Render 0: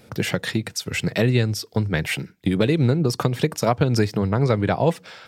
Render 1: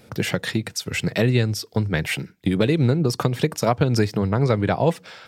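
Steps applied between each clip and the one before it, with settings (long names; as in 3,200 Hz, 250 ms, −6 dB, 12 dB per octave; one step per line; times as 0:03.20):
no processing that can be heard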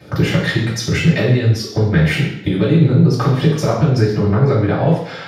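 downward compressor, threshold −25 dBFS, peak gain reduction 12 dB
convolution reverb RT60 0.70 s, pre-delay 3 ms, DRR −7 dB
level −6.5 dB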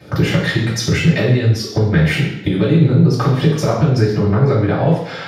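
camcorder AGC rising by 9 dB per second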